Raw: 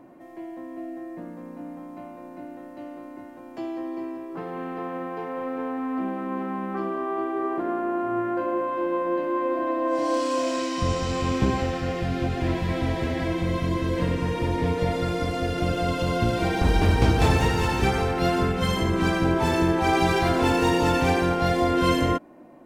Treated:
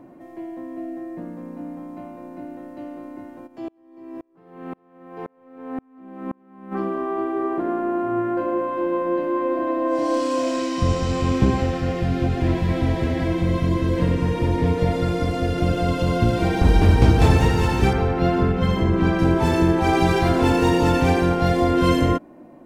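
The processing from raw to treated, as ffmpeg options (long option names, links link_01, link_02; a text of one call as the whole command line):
ffmpeg -i in.wav -filter_complex "[0:a]asplit=3[link_01][link_02][link_03];[link_01]afade=type=out:start_time=3.46:duration=0.02[link_04];[link_02]aeval=exprs='val(0)*pow(10,-36*if(lt(mod(-1.9*n/s,1),2*abs(-1.9)/1000),1-mod(-1.9*n/s,1)/(2*abs(-1.9)/1000),(mod(-1.9*n/s,1)-2*abs(-1.9)/1000)/(1-2*abs(-1.9)/1000))/20)':channel_layout=same,afade=type=in:start_time=3.46:duration=0.02,afade=type=out:start_time=6.71:duration=0.02[link_05];[link_03]afade=type=in:start_time=6.71:duration=0.02[link_06];[link_04][link_05][link_06]amix=inputs=3:normalize=0,asettb=1/sr,asplit=3[link_07][link_08][link_09];[link_07]atrim=end=17.934[link_10];[link_08]atrim=start=17.93:end=19.19,asetpts=PTS-STARTPTS,afade=type=in:duration=0.004:curve=qsin,afade=type=out:start_time=1.256:duration=0.004:curve=qsin,equalizer=frequency=10000:width_type=o:width=1.8:gain=-13.5[link_11];[link_09]atrim=start=19.186[link_12];[link_10][link_11]acrossfade=duration=0.004:curve1=hsin:curve2=qsin[link_13];[link_13][link_12]acrossfade=duration=0.004:curve1=qsin:curve2=hsin,lowshelf=frequency=450:gain=6" out.wav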